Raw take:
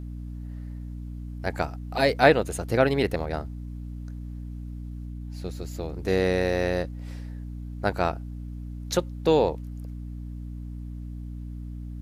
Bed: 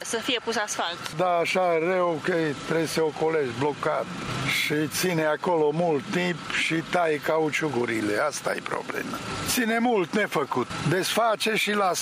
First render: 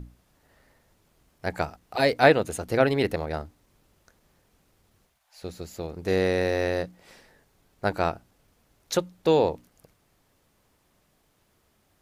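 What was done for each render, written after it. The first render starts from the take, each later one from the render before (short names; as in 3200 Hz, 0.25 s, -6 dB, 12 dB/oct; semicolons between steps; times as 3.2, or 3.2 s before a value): notches 60/120/180/240/300 Hz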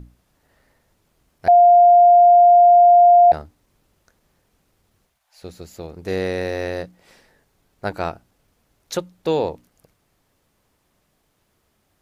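1.48–3.32 bleep 702 Hz -7 dBFS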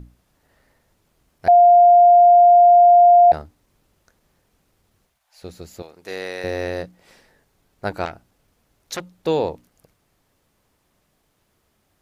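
5.82–6.44 HPF 1000 Hz 6 dB/oct; 8.05–9.13 core saturation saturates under 2000 Hz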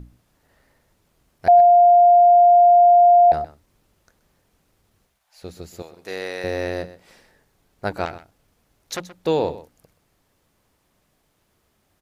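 echo 0.126 s -15.5 dB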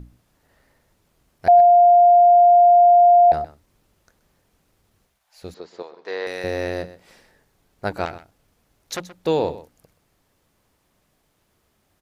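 5.54–6.27 speaker cabinet 320–4800 Hz, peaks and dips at 450 Hz +5 dB, 1000 Hz +9 dB, 1700 Hz +3 dB, 2600 Hz -4 dB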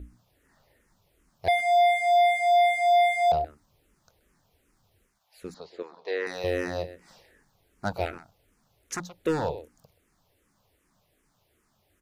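hard clip -17 dBFS, distortion -9 dB; endless phaser -2.6 Hz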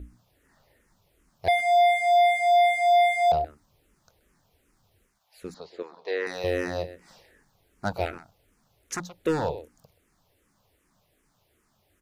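gain +1 dB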